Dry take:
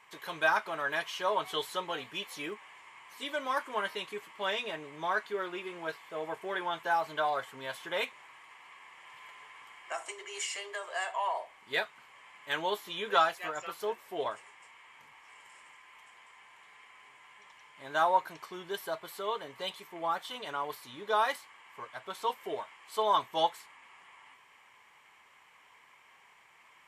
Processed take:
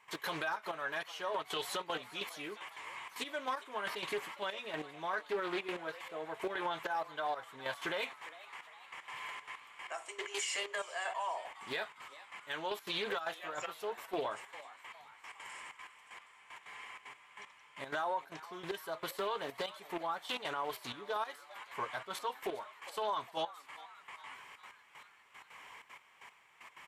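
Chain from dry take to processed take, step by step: trance gate ".x.xxxx.x...x..." 190 bpm -12 dB; compression 4:1, threshold -38 dBFS, peak gain reduction 15 dB; peak limiter -34 dBFS, peak gain reduction 9 dB; frequency-shifting echo 406 ms, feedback 59%, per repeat +150 Hz, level -17.5 dB; loudspeaker Doppler distortion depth 0.24 ms; trim +7 dB

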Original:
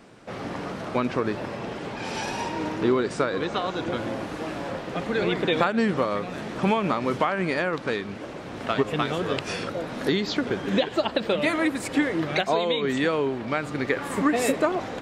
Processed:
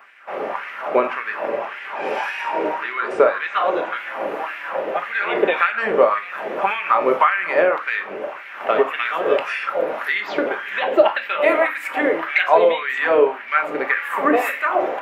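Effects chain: octave divider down 2 oct, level -5 dB; high-order bell 5.9 kHz -15.5 dB; simulated room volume 540 m³, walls furnished, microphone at 1.2 m; LFO high-pass sine 1.8 Hz 460–2000 Hz; trim +4.5 dB

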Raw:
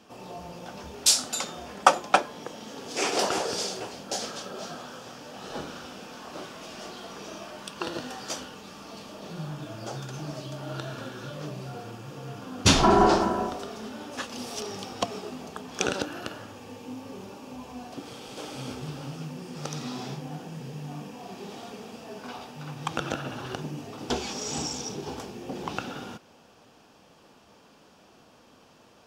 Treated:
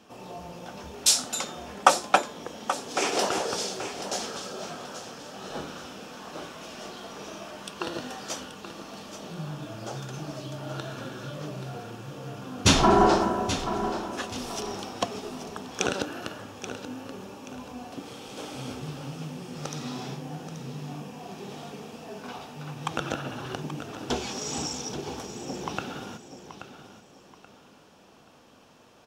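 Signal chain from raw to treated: band-stop 4.7 kHz, Q 18; feedback delay 830 ms, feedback 32%, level -11 dB

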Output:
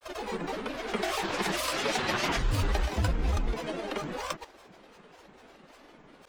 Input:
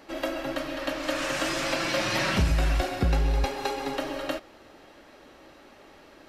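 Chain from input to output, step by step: peaking EQ 98 Hz -13.5 dB 0.57 oct; granulator, pitch spread up and down by 12 st; trim -1 dB

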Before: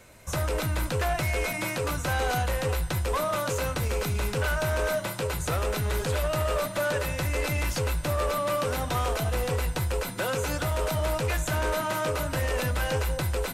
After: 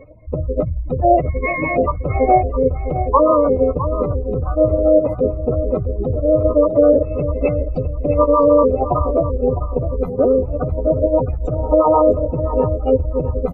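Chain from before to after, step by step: spectral contrast enhancement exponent 4; Savitzky-Golay filter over 25 samples; peaking EQ 890 Hz +12 dB 2.9 oct; hum notches 50/100/150/200/250/300/350/400 Hz; feedback delay 658 ms, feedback 26%, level -11 dB; harmony voices -12 st -7 dB, -4 st -12 dB, -3 st -10 dB; Butterworth band-stop 1.6 kHz, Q 1.7; trim +5 dB

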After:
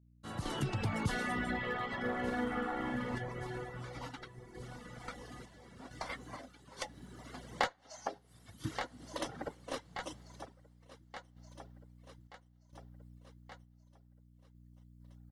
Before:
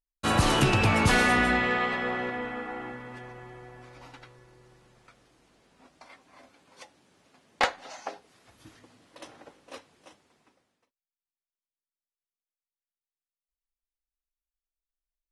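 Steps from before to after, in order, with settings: fade-in on the opening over 4.75 s; band-stop 2.5 kHz, Q 6.4; on a send: feedback delay 1177 ms, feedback 56%, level -19 dB; on the sum: reverb removal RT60 1.2 s; hum 60 Hz, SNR 26 dB; random-step tremolo 2.2 Hz, depth 70%; compression 3:1, threshold -51 dBFS, peak gain reduction 22.5 dB; 2.00–3.15 s: doubling 45 ms -3 dB; in parallel at -11 dB: Schmitt trigger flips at -44.5 dBFS; on the sum: peaking EQ 140 Hz +6 dB 1.6 oct; trim +13 dB

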